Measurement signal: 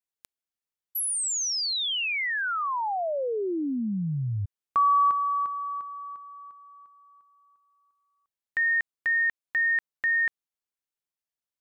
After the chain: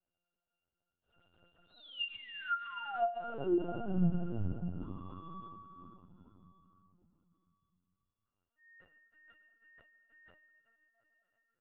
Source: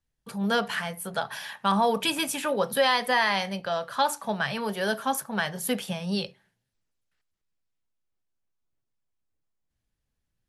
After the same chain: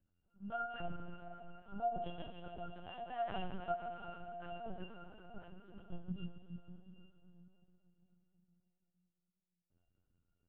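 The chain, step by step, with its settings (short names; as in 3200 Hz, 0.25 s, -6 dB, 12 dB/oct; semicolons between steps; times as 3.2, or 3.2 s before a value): zero-crossing step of -28.5 dBFS; gate -26 dBFS, range -41 dB; auto swell 0.788 s; in parallel at +1 dB: compressor 20:1, threshold -40 dBFS; on the sum: octave resonator F, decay 0.26 s; on a send: feedback echo 0.468 s, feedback 31%, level -23 dB; on the sum: plate-style reverb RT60 4.5 s, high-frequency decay 0.85×, DRR 3.5 dB; LPC vocoder at 8 kHz pitch kept; gain +4.5 dB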